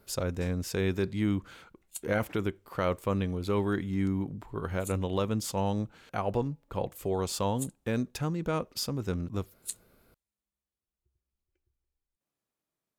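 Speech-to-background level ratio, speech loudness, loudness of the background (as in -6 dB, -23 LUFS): 11.0 dB, -32.0 LUFS, -43.0 LUFS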